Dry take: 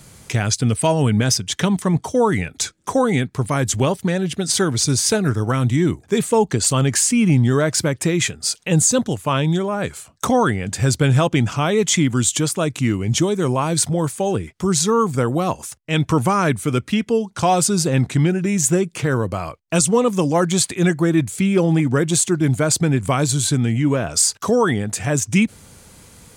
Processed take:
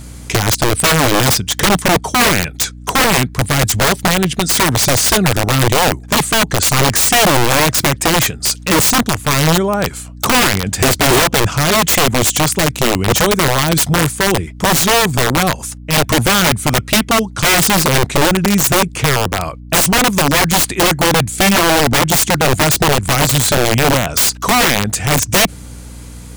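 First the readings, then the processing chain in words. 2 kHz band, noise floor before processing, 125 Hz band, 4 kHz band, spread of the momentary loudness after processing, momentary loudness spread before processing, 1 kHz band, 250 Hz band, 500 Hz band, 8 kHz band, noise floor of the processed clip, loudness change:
+12.0 dB, -50 dBFS, +2.0 dB, +11.0 dB, 5 LU, 6 LU, +8.5 dB, +1.5 dB, +3.5 dB, +5.5 dB, -33 dBFS, +6.0 dB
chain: integer overflow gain 13 dB; hum 60 Hz, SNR 19 dB; trim +6.5 dB

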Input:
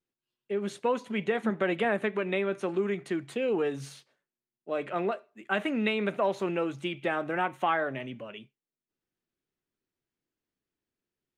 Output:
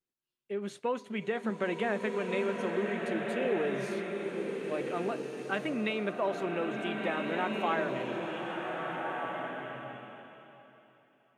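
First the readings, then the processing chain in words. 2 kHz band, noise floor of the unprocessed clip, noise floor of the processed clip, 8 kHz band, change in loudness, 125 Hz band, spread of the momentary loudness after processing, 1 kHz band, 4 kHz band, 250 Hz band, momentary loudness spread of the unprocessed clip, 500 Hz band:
-2.0 dB, under -85 dBFS, -68 dBFS, no reading, -3.0 dB, -2.0 dB, 7 LU, -2.0 dB, -2.0 dB, -2.0 dB, 9 LU, -2.0 dB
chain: swelling reverb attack 1680 ms, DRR 1 dB; trim -4.5 dB

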